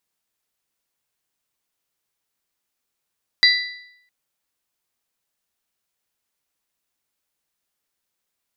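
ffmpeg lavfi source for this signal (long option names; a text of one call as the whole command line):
ffmpeg -f lavfi -i "aevalsrc='0.251*pow(10,-3*t/0.77)*sin(2*PI*1980*t)+0.237*pow(10,-3*t/0.625)*sin(2*PI*3960*t)+0.224*pow(10,-3*t/0.592)*sin(2*PI*4752*t)':duration=0.66:sample_rate=44100" out.wav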